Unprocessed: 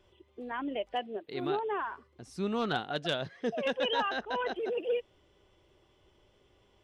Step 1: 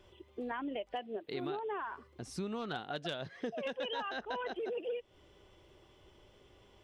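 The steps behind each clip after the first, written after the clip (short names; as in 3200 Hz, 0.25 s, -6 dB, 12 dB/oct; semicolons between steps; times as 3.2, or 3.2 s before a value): compressor, threshold -40 dBFS, peak gain reduction 13.5 dB; gain +4 dB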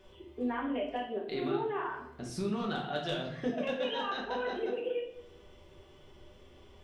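reverb RT60 0.70 s, pre-delay 5 ms, DRR -1.5 dB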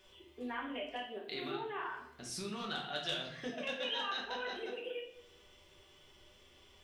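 tilt shelf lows -7.5 dB, about 1300 Hz; gain -3 dB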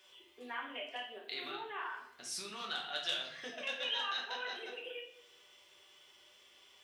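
HPF 1100 Hz 6 dB/oct; gain +2.5 dB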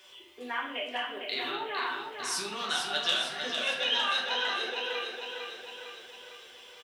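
feedback echo 0.454 s, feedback 55%, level -6 dB; gain +8 dB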